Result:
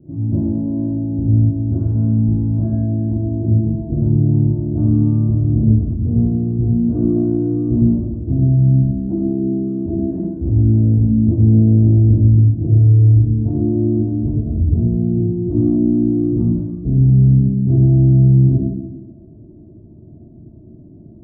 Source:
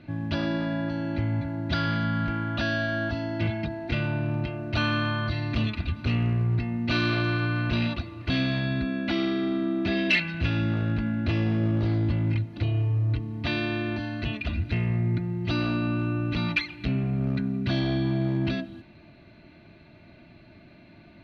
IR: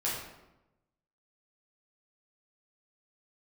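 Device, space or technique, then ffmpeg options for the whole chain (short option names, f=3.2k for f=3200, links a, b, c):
next room: -filter_complex "[0:a]lowpass=f=460:w=0.5412,lowpass=f=460:w=1.3066,lowpass=1.3k,equalizer=f=660:t=o:w=0.77:g=-2,bandreject=f=530:w=12[a];[1:a]atrim=start_sample=2205[b];[a][b]afir=irnorm=-1:irlink=0,volume=5.5dB"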